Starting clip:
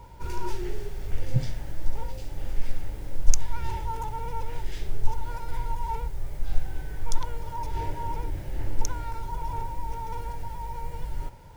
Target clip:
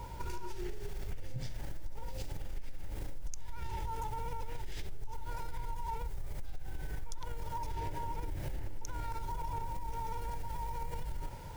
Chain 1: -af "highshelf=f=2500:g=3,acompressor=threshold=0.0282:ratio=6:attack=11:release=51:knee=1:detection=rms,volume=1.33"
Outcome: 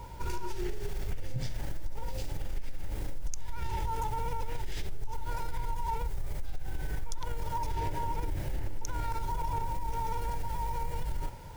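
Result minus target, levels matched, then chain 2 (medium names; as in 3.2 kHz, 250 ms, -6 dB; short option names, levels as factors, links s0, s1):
compression: peak gain reduction -5.5 dB
-af "highshelf=f=2500:g=3,acompressor=threshold=0.0133:ratio=6:attack=11:release=51:knee=1:detection=rms,volume=1.33"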